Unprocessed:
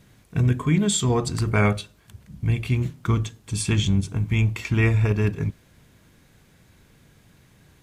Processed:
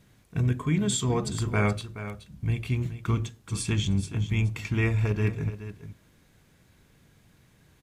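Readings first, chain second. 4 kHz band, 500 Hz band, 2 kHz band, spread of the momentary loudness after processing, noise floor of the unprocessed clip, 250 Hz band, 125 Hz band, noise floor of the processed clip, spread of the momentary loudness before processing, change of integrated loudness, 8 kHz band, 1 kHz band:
-4.5 dB, -5.0 dB, -4.5 dB, 12 LU, -57 dBFS, -5.0 dB, -4.5 dB, -61 dBFS, 10 LU, -5.0 dB, -4.5 dB, -4.5 dB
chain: delay 424 ms -12 dB; trim -5 dB

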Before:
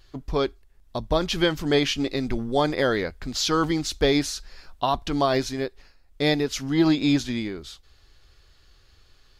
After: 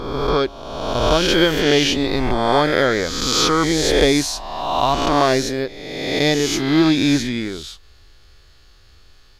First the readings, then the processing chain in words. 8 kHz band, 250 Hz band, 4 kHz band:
+9.5 dB, +5.5 dB, +8.5 dB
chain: reverse spectral sustain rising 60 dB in 1.45 s; trim +3.5 dB

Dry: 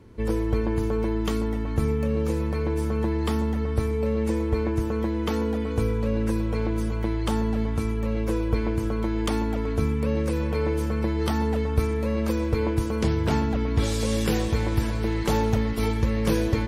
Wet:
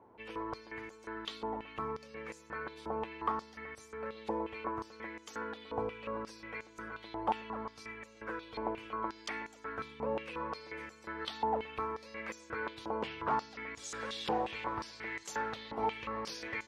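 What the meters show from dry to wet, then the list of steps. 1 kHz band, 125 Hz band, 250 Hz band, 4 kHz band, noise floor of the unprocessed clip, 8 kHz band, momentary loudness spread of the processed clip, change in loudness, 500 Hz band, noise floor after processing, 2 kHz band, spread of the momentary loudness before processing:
-2.5 dB, -28.5 dB, -19.5 dB, -8.0 dB, -27 dBFS, -11.5 dB, 10 LU, -14.0 dB, -13.5 dB, -58 dBFS, -5.0 dB, 3 LU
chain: treble shelf 2.6 kHz -11 dB; step-sequenced band-pass 5.6 Hz 830–6800 Hz; trim +7.5 dB

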